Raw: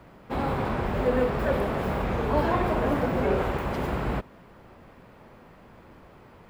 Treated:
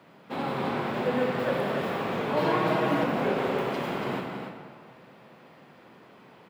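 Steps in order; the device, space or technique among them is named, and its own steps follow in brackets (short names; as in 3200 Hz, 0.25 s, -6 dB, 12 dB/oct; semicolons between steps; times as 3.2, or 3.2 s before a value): stadium PA (HPF 140 Hz 24 dB/oct; bell 3400 Hz +6 dB 1.3 oct; loudspeakers at several distances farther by 61 m -12 dB, 98 m -7 dB; reverb RT60 1.8 s, pre-delay 25 ms, DRR 3.5 dB); 2.36–3.04 comb 6.3 ms, depth 69%; gain -4 dB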